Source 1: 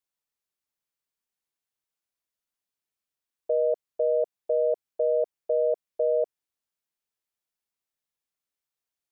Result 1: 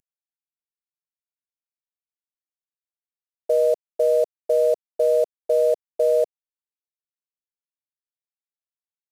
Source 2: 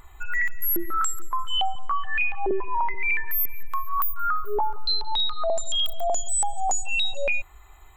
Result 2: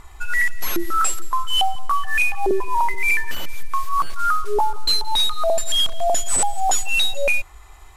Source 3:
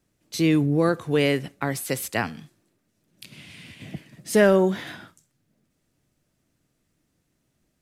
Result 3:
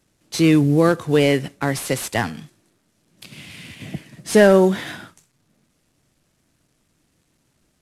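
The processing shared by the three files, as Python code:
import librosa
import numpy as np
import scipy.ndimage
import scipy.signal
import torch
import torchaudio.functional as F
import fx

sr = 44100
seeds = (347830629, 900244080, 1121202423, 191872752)

y = fx.cvsd(x, sr, bps=64000)
y = y * 10.0 ** (5.5 / 20.0)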